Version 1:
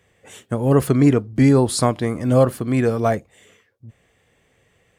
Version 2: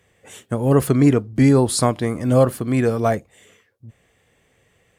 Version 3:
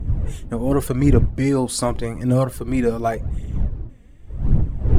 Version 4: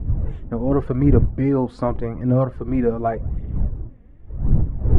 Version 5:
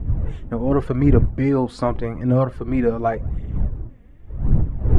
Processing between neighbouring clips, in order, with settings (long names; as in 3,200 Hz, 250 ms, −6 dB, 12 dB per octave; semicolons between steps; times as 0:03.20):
parametric band 12,000 Hz +3 dB 1.2 octaves
wind on the microphone 98 Hz −21 dBFS; phase shifter 0.87 Hz, delay 4.3 ms, feedback 45%; level −4 dB
low-pass filter 1,400 Hz 12 dB per octave
high-shelf EQ 2,100 Hz +11 dB